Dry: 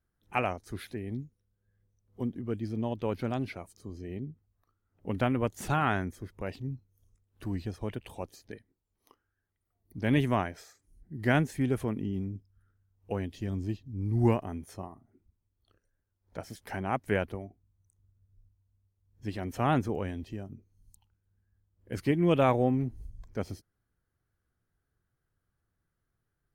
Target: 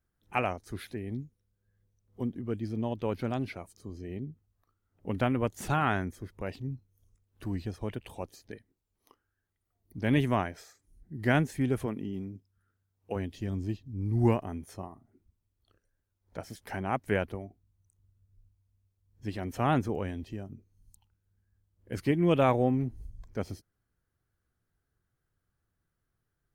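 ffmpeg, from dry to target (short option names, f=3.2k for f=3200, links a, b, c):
-filter_complex "[0:a]asettb=1/sr,asplit=3[a][b][c];[a]atrim=end=11.864[d];[b]atrim=start=11.86:end=13.16,asetpts=PTS-STARTPTS,afade=t=in:d=0.004:c=qsin,afade=t=out:st=1.296:d=0.004:c=qsin,highpass=f=200:p=1[e];[c]atrim=start=13.156[f];[d][e]acrossfade=d=0.004:c1=hsin:c2=qsin[g];[g][f]acrossfade=d=0.004:c1=qsin:c2=hsin"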